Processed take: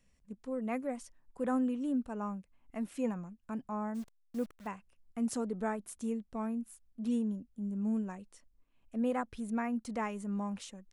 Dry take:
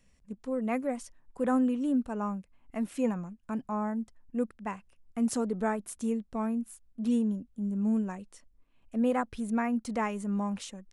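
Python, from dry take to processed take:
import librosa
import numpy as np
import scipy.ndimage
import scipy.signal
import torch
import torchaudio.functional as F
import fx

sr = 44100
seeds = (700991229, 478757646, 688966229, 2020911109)

y = fx.delta_hold(x, sr, step_db=-44.5, at=(3.94, 4.66), fade=0.02)
y = y * 10.0 ** (-5.0 / 20.0)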